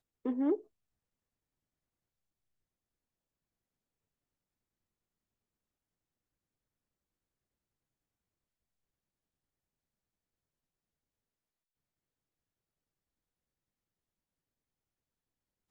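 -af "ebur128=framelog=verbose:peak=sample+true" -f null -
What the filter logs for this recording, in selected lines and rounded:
Integrated loudness:
  I:         -33.9 LUFS
  Threshold: -44.6 LUFS
Loudness range:
  LRA:         5.5 LU
  Threshold: -61.6 LUFS
  LRA low:   -46.2 LUFS
  LRA high:  -40.8 LUFS
Sample peak:
  Peak:      -20.9 dBFS
True peak:
  Peak:      -20.9 dBFS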